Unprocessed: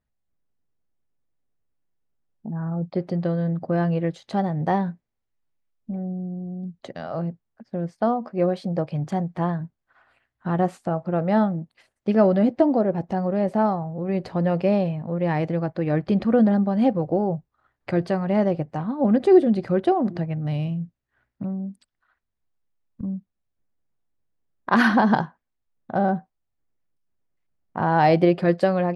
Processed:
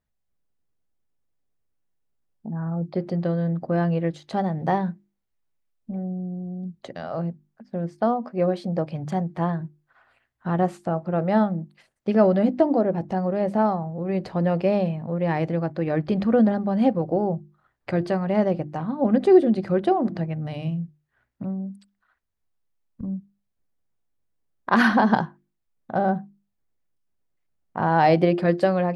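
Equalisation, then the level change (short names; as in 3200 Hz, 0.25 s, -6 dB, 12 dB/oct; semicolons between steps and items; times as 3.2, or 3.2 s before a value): notches 50/100/150/200/250/300/350 Hz; 0.0 dB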